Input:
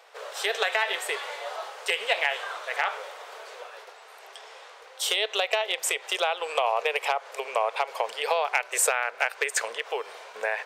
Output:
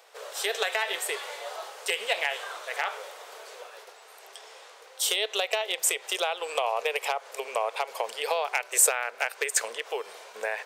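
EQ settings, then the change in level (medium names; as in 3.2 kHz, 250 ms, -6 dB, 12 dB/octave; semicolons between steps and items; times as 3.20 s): peaking EQ 220 Hz +7.5 dB 2.2 oct; treble shelf 5 kHz +12 dB; -5.0 dB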